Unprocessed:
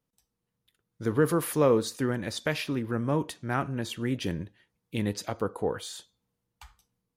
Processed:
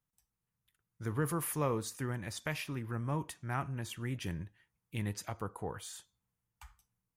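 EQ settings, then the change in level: dynamic bell 1.5 kHz, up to -5 dB, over -45 dBFS, Q 2.5; ten-band graphic EQ 250 Hz -8 dB, 500 Hz -10 dB, 4 kHz -9 dB; -2.0 dB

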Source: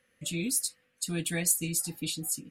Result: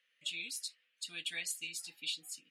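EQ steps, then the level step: band-pass filter 3.1 kHz, Q 2.1; +1.5 dB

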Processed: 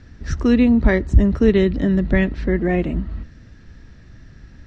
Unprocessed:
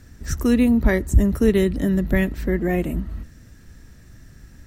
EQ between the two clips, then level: low-pass 4.9 kHz 24 dB/octave; +2.5 dB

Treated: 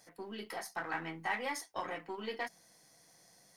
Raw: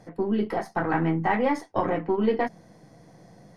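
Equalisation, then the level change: pre-emphasis filter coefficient 0.97; +5.5 dB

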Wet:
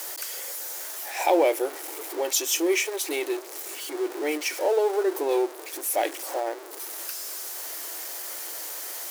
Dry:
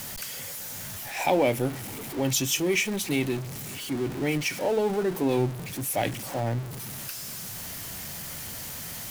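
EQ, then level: brick-wall FIR high-pass 300 Hz; peaking EQ 2.8 kHz -4.5 dB 1.2 oct; +3.0 dB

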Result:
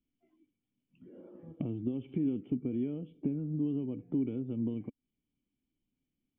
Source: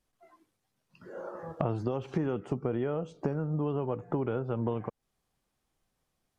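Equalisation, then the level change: cascade formant filter i; +5.5 dB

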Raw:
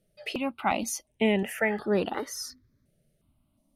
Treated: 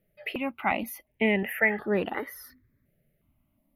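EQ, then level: FFT filter 1.4 kHz 0 dB, 2 kHz +8 dB, 7.8 kHz -26 dB, 12 kHz +6 dB; -1.0 dB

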